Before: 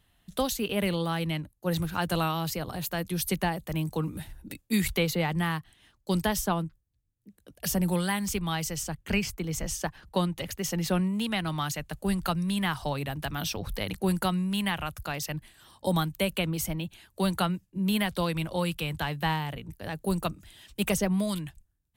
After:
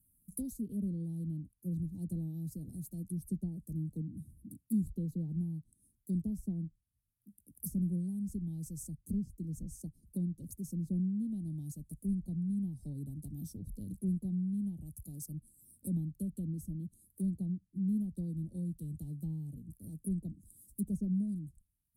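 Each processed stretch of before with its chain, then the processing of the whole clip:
0:04.01–0:04.68: high-pass filter 80 Hz + bass and treble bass +5 dB, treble −8 dB + downward compressor 1.5 to 1, threshold −40 dBFS
whole clip: elliptic band-stop filter 250–9,900 Hz, stop band 80 dB; treble cut that deepens with the level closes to 2,300 Hz, closed at −28 dBFS; spectral tilt +2 dB per octave

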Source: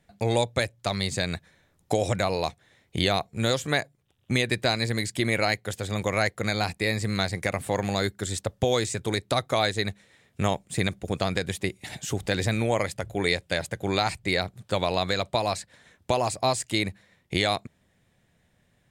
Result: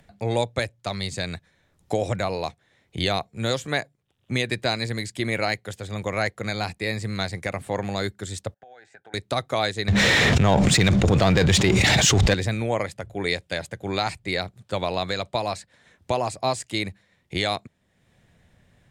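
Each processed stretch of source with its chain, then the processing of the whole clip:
0:08.54–0:09.14: pair of resonant band-passes 1,100 Hz, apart 0.98 octaves + downward compressor 12 to 1, threshold −40 dBFS
0:09.88–0:12.34: low-pass filter 6,900 Hz 24 dB per octave + power curve on the samples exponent 0.7 + envelope flattener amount 100%
whole clip: high-shelf EQ 11,000 Hz −8.5 dB; upward compression, threshold −33 dBFS; multiband upward and downward expander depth 40%

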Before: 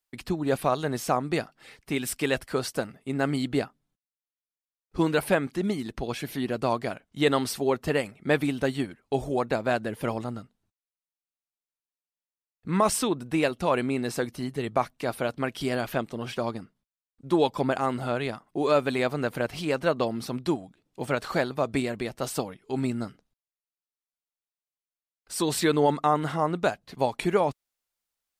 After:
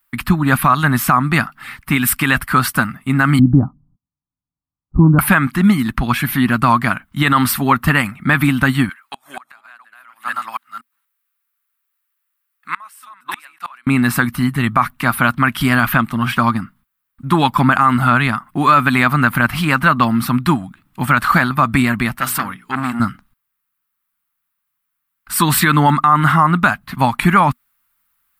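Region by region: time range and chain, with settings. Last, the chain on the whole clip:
0:03.39–0:05.19: Bessel low-pass filter 550 Hz, order 6 + low-shelf EQ 430 Hz +8 dB + notch comb filter 220 Hz
0:08.89–0:13.87: delay that plays each chunk backwards 240 ms, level −2.5 dB + high-pass filter 1,100 Hz + gate with flip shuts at −26 dBFS, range −30 dB
0:22.17–0:23.00: low-shelf EQ 210 Hz −9 dB + mains-hum notches 60/120/180/240/300/360/420/480 Hz + saturating transformer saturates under 1,800 Hz
whole clip: drawn EQ curve 240 Hz 0 dB, 460 Hz −23 dB, 1,200 Hz +7 dB, 6,200 Hz −12 dB, 14,000 Hz +6 dB; boost into a limiter +18.5 dB; level −1 dB

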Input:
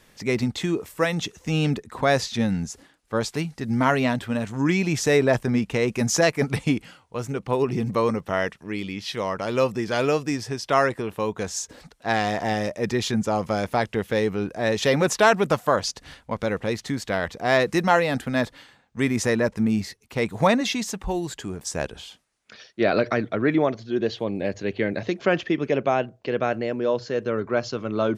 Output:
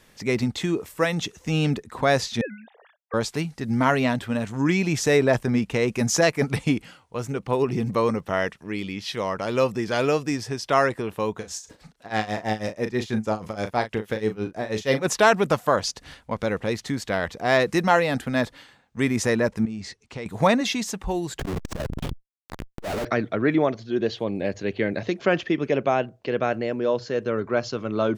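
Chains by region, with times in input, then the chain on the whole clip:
0:02.41–0:03.14: three sine waves on the formant tracks + high-pass with resonance 660 Hz, resonance Q 3.2 + downward expander −58 dBFS
0:11.37–0:15.06: amplitude tremolo 6.2 Hz, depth 92% + double-tracking delay 37 ms −9 dB
0:19.65–0:20.26: low-pass filter 8,000 Hz 24 dB per octave + downward compressor 5 to 1, threshold −30 dBFS
0:21.39–0:23.05: comparator with hysteresis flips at −37 dBFS + spectral tilt −1.5 dB per octave + saturating transformer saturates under 170 Hz
whole clip: no processing

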